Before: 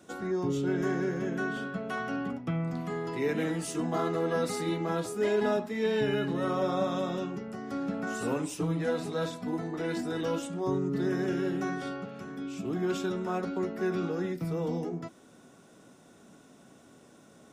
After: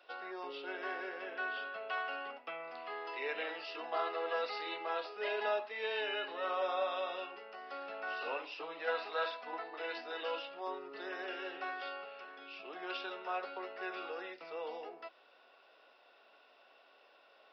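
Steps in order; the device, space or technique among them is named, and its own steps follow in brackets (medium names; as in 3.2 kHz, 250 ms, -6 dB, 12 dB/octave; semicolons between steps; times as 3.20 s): 8.87–9.64 s: dynamic bell 1.4 kHz, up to +6 dB, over -47 dBFS, Q 0.99; musical greeting card (resampled via 11.025 kHz; high-pass 550 Hz 24 dB/octave; peaking EQ 2.7 kHz +10.5 dB 0.2 oct); trim -2.5 dB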